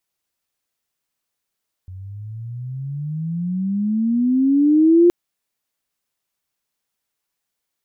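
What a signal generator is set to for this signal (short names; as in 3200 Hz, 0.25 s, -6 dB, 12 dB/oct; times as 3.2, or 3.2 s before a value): gliding synth tone sine, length 3.22 s, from 90.9 Hz, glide +23.5 st, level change +24 dB, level -8 dB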